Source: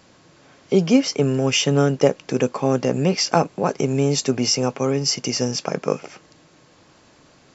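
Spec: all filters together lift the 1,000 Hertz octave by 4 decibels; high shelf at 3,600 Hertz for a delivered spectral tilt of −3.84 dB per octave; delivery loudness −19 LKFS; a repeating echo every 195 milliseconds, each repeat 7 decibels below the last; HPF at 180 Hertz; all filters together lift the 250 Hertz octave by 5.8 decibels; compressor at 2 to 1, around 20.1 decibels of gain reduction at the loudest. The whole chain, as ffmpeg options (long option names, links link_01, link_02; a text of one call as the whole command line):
ffmpeg -i in.wav -af "highpass=180,equalizer=frequency=250:width_type=o:gain=7.5,equalizer=frequency=1000:width_type=o:gain=4.5,highshelf=frequency=3600:gain=5,acompressor=threshold=-43dB:ratio=2,aecho=1:1:195|390|585|780|975:0.447|0.201|0.0905|0.0407|0.0183,volume=13dB" out.wav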